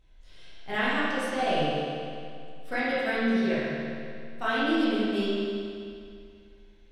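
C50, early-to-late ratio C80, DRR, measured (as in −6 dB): −4.5 dB, −2.0 dB, −11.0 dB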